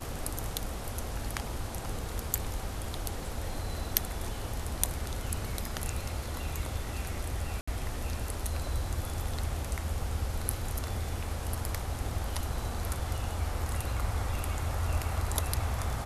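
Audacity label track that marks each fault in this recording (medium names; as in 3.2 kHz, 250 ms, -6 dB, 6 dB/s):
7.610000	7.670000	dropout 65 ms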